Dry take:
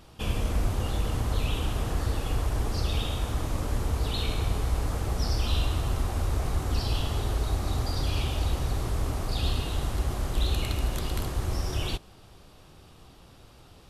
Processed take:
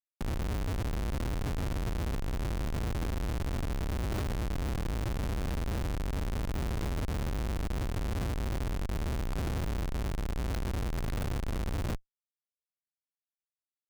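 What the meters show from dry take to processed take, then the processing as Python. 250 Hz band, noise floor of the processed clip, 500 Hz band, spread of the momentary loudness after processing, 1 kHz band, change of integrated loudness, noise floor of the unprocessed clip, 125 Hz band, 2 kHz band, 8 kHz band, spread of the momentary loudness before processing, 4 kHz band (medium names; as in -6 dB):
-1.0 dB, under -85 dBFS, -4.0 dB, 1 LU, -5.5 dB, -5.0 dB, -52 dBFS, -5.0 dB, -3.5 dB, -7.5 dB, 2 LU, -11.0 dB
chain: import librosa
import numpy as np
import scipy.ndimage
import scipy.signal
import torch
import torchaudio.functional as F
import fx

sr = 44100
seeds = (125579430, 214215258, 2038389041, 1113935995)

y = fx.spec_erase(x, sr, start_s=7.72, length_s=1.34, low_hz=720.0, high_hz=2300.0)
y = fx.room_flutter(y, sr, wall_m=6.9, rt60_s=0.21)
y = fx.schmitt(y, sr, flips_db=-27.5)
y = F.gain(torch.from_numpy(y), -4.0).numpy()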